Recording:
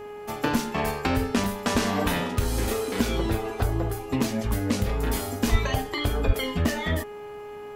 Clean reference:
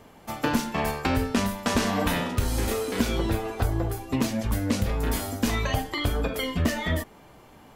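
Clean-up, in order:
hum removal 415.8 Hz, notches 7
0:05.51–0:05.63: high-pass filter 140 Hz 24 dB per octave
0:06.26–0:06.38: high-pass filter 140 Hz 24 dB per octave
repair the gap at 0:01.44, 2.7 ms

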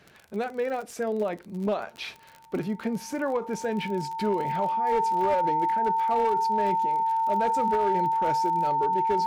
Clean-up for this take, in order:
clipped peaks rebuilt −18.5 dBFS
click removal
notch filter 900 Hz, Q 30

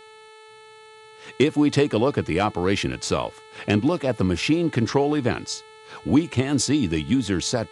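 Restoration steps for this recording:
hum removal 436.1 Hz, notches 10
downward expander −39 dBFS, range −21 dB

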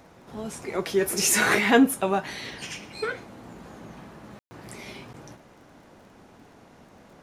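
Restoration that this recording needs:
click removal
ambience match 0:04.39–0:04.51

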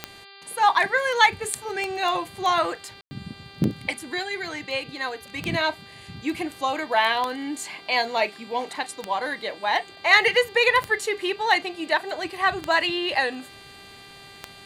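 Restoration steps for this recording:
click removal
hum removal 395.6 Hz, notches 12
ambience match 0:03.01–0:03.11

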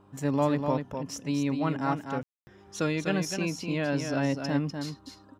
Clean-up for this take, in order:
hum removal 99.2 Hz, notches 4
ambience match 0:02.23–0:02.47
echo removal 248 ms −6.5 dB

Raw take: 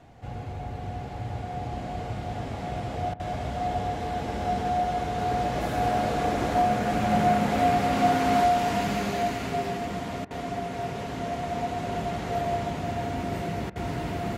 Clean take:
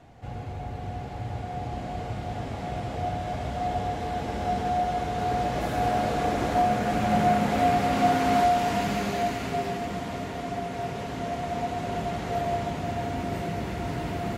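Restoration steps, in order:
repair the gap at 0:03.14/0:10.25/0:13.70, 56 ms

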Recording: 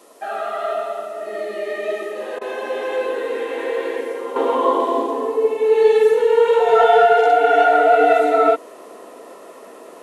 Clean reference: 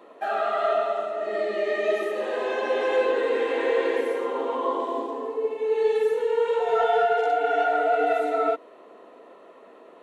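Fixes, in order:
repair the gap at 0:02.39, 22 ms
downward expander −32 dBFS, range −21 dB
level correction −9 dB, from 0:04.36

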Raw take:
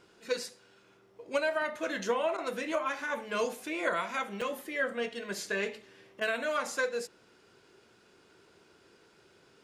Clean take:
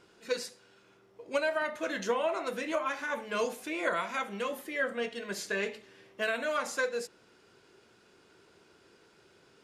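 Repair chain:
repair the gap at 0:04.41, 4.4 ms
repair the gap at 0:02.37/0:06.20, 10 ms

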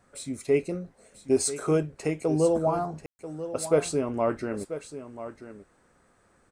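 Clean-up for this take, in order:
ambience match 0:03.06–0:03.19
echo removal 988 ms −12.5 dB

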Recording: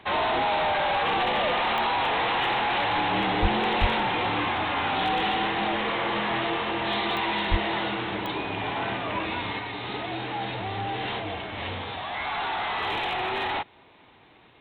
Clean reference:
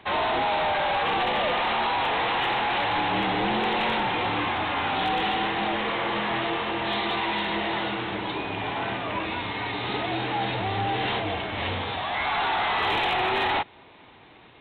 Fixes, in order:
click removal
0:03.41–0:03.53: high-pass filter 140 Hz 24 dB per octave
0:03.80–0:03.92: high-pass filter 140 Hz 24 dB per octave
0:07.50–0:07.62: high-pass filter 140 Hz 24 dB per octave
0:09.59: level correction +4 dB

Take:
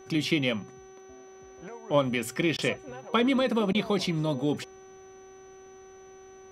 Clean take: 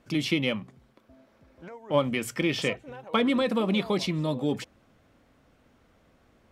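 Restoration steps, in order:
hum removal 380.9 Hz, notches 11
notch filter 6,000 Hz, Q 30
repair the gap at 0:02.57/0:03.73, 15 ms

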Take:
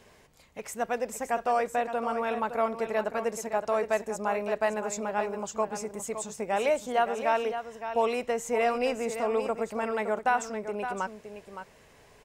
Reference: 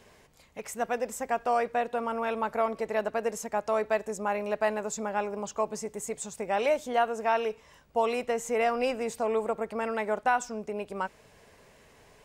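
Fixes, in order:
echo removal 565 ms −9.5 dB

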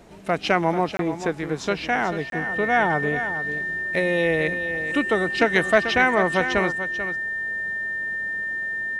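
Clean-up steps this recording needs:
notch filter 1,800 Hz, Q 30
repair the gap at 0:00.97/0:02.30, 22 ms
echo removal 439 ms −10.5 dB

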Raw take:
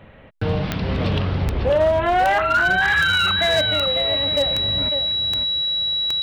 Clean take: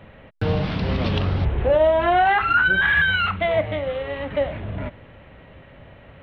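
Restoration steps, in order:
clipped peaks rebuilt −12.5 dBFS
click removal
notch filter 3,900 Hz, Q 30
echo removal 549 ms −8 dB

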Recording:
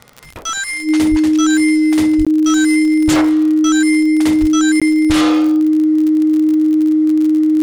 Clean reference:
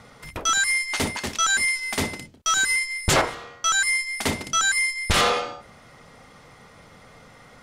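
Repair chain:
click removal
notch filter 310 Hz, Q 30
high-pass at the plosives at 0:01.10/0:02.17/0:04.40
repair the gap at 0:02.25/0:04.80, 16 ms

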